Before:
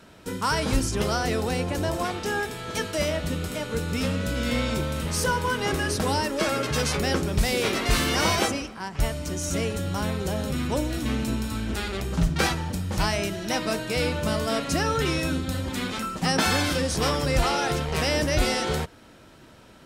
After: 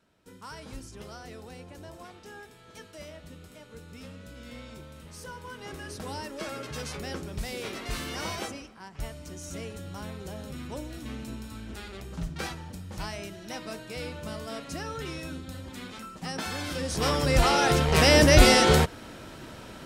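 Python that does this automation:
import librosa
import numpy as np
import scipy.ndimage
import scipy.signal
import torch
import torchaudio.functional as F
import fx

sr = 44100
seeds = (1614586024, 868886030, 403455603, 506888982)

y = fx.gain(x, sr, db=fx.line((5.19, -18.5), (6.24, -11.5), (16.54, -11.5), (17.12, -1.0), (18.25, 7.0)))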